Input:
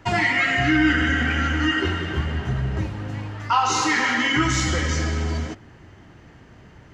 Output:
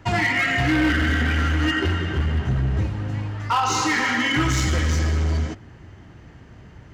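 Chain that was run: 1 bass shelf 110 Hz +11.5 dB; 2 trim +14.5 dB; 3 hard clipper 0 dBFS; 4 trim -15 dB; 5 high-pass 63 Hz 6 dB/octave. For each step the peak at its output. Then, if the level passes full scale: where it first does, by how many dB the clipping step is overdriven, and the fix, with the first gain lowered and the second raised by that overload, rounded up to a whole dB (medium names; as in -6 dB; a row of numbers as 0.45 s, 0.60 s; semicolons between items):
-6.0 dBFS, +8.5 dBFS, 0.0 dBFS, -15.0 dBFS, -11.0 dBFS; step 2, 8.5 dB; step 2 +5.5 dB, step 4 -6 dB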